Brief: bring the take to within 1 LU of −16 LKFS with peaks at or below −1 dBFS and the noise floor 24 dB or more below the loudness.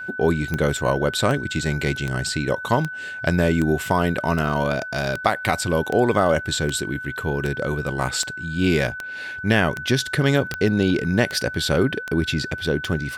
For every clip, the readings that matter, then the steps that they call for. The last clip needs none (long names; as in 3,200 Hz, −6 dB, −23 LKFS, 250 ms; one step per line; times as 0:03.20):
number of clicks 17; interfering tone 1,500 Hz; level of the tone −30 dBFS; integrated loudness −22.0 LKFS; sample peak −4.0 dBFS; target loudness −16.0 LKFS
→ click removal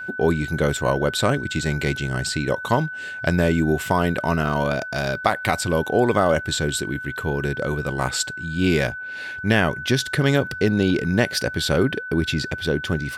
number of clicks 0; interfering tone 1,500 Hz; level of the tone −30 dBFS
→ notch filter 1,500 Hz, Q 30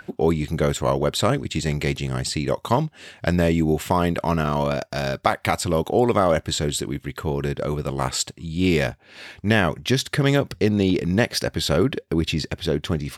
interfering tone none found; integrated loudness −22.5 LKFS; sample peak −4.5 dBFS; target loudness −16.0 LKFS
→ level +6.5 dB
brickwall limiter −1 dBFS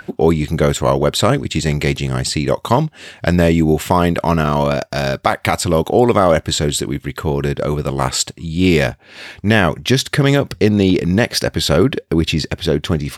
integrated loudness −16.5 LKFS; sample peak −1.0 dBFS; background noise floor −48 dBFS